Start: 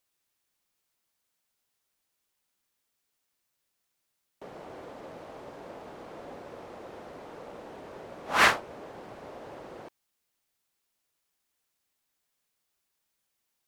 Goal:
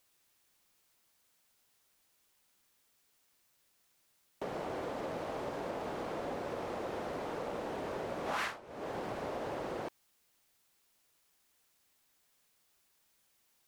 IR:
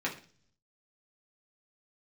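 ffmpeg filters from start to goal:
-af "acompressor=threshold=-41dB:ratio=12,volume=7dB"

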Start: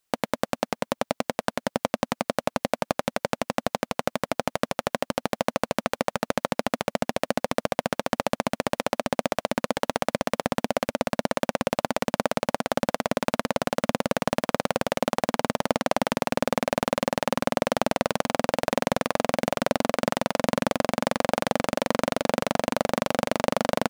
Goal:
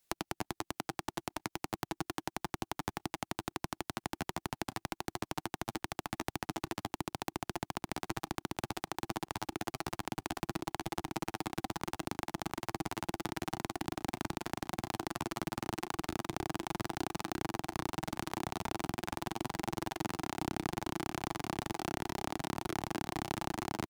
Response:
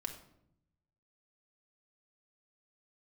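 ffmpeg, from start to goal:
-filter_complex "[0:a]equalizer=frequency=870:width_type=o:width=2.6:gain=-4,asetrate=62367,aresample=44100,atempo=0.707107,acrossover=split=160[link_01][link_02];[link_02]acompressor=threshold=-38dB:ratio=10[link_03];[link_01][link_03]amix=inputs=2:normalize=0,volume=4dB"

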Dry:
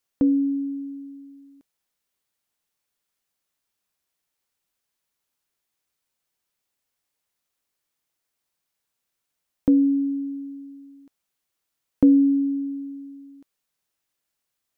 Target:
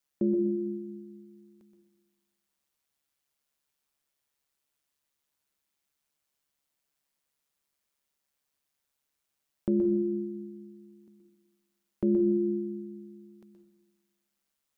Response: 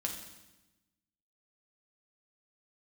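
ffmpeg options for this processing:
-filter_complex "[0:a]alimiter=limit=-17dB:level=0:latency=1:release=370,aeval=exprs='val(0)*sin(2*PI*71*n/s)':channel_layout=same,asplit=2[link_01][link_02];[1:a]atrim=start_sample=2205,adelay=123[link_03];[link_02][link_03]afir=irnorm=-1:irlink=0,volume=-7dB[link_04];[link_01][link_04]amix=inputs=2:normalize=0"

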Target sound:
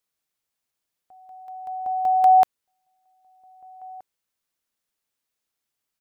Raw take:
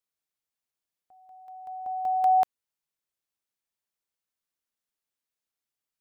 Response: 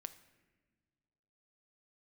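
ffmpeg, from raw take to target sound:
-filter_complex "[0:a]asplit=2[link_01][link_02];[link_02]adelay=1574,volume=-24dB,highshelf=frequency=4000:gain=-35.4[link_03];[link_01][link_03]amix=inputs=2:normalize=0,volume=6.5dB"

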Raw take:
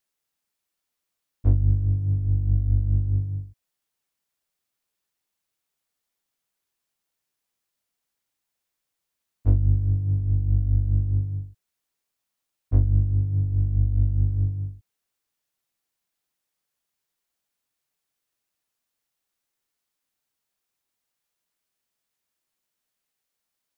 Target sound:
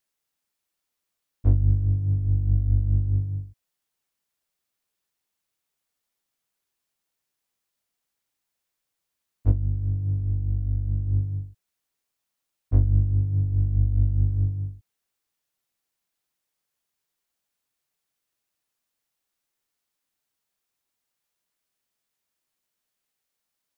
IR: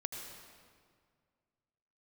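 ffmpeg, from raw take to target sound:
-filter_complex "[0:a]asettb=1/sr,asplit=3[link_01][link_02][link_03];[link_01]atrim=end=9.514[link_04];[link_02]atrim=start=9.51:end=11.07,asetpts=PTS-STARTPTS,afade=type=in:duration=0.004:curve=qsin,afade=type=out:start_time=1.556:duration=0.004:curve=qsin,acompressor=threshold=-21dB:ratio=6[link_05];[link_03]atrim=start=11.066[link_06];[link_04][link_05]acrossfade=duration=0.004:curve1=hsin:curve2=qsin[link_07];[link_07][link_06]acrossfade=duration=0.004:curve1=qsin:curve2=hsin"

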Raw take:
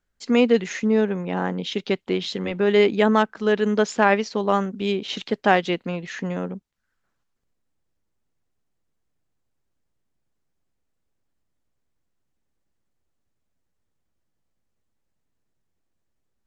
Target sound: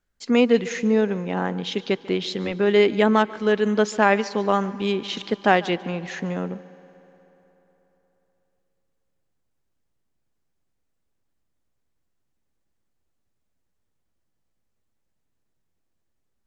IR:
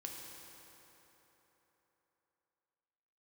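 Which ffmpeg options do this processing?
-filter_complex "[0:a]asplit=2[link_01][link_02];[1:a]atrim=start_sample=2205,adelay=144[link_03];[link_02][link_03]afir=irnorm=-1:irlink=0,volume=-14.5dB[link_04];[link_01][link_04]amix=inputs=2:normalize=0"

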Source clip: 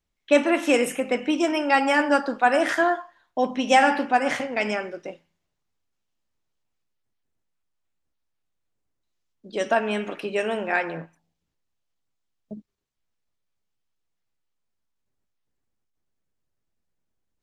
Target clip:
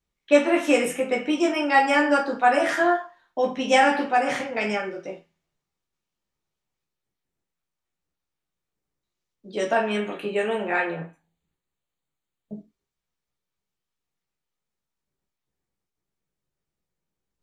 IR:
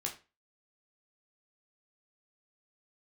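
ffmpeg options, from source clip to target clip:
-filter_complex "[0:a]asettb=1/sr,asplit=3[link_01][link_02][link_03];[link_01]atrim=end=9.984[link_04];[link_02]atrim=start=9.98:end=12.54,asetpts=PTS-STARTPTS,afade=type=in:duration=0.004:curve=qsin,afade=type=out:start_time=2.556:duration=0.004:curve=qsin,asuperstop=centerf=5400:order=4:qfactor=3[link_05];[link_03]atrim=start=12.536[link_06];[link_04][link_05]acrossfade=duration=0.004:curve1=hsin:curve2=qsin[link_07];[link_07][link_06]acrossfade=duration=0.004:curve1=qsin:curve2=hsin[link_08];[1:a]atrim=start_sample=2205,atrim=end_sample=6174,asetrate=48510,aresample=44100[link_09];[link_08][link_09]afir=irnorm=-1:irlink=0"

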